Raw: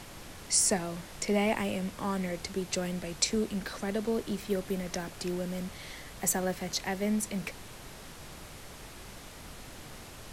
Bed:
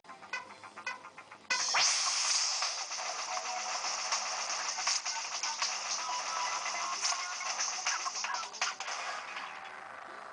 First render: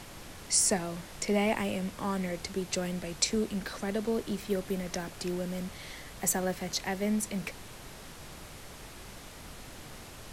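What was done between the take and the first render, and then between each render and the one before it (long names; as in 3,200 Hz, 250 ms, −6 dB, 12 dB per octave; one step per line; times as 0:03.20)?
no processing that can be heard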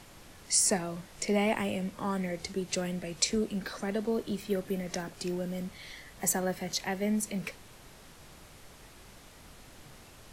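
noise reduction from a noise print 6 dB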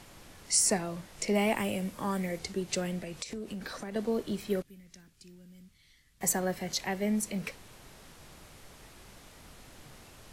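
0:01.35–0:02.39: high-shelf EQ 10,000 Hz +11 dB
0:02.98–0:03.96: downward compressor 16 to 1, threshold −34 dBFS
0:04.62–0:06.21: guitar amp tone stack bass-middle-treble 6-0-2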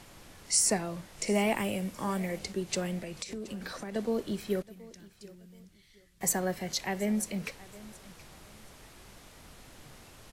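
repeating echo 725 ms, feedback 26%, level −20 dB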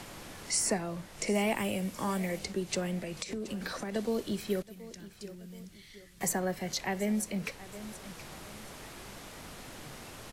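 multiband upward and downward compressor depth 40%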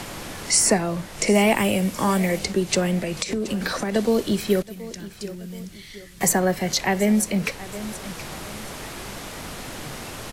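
level +11.5 dB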